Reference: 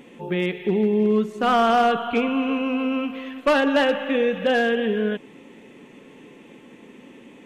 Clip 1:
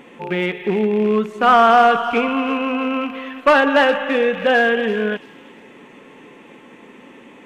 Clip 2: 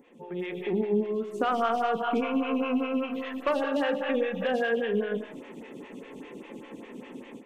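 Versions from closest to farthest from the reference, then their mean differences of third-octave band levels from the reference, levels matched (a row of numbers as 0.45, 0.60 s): 1, 2; 2.5, 5.0 dB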